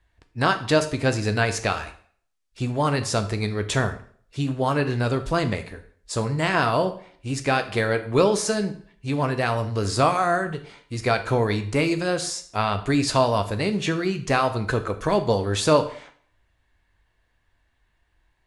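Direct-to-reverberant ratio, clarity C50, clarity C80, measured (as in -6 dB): 8.0 dB, 13.5 dB, 16.5 dB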